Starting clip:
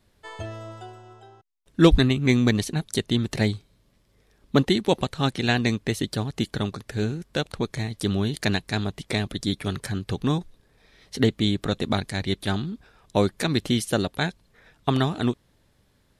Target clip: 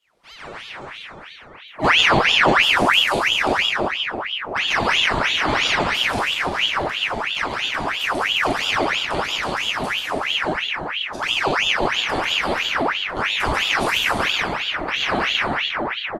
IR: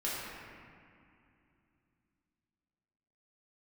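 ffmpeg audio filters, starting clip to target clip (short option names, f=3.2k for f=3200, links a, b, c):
-filter_complex "[0:a]aecho=1:1:139.9|201.2:0.794|0.562[a];[1:a]atrim=start_sample=2205,asetrate=22932,aresample=44100[b];[a][b]afir=irnorm=-1:irlink=0,aeval=exprs='val(0)*sin(2*PI*1800*n/s+1800*0.75/3*sin(2*PI*3*n/s))':c=same,volume=-7dB"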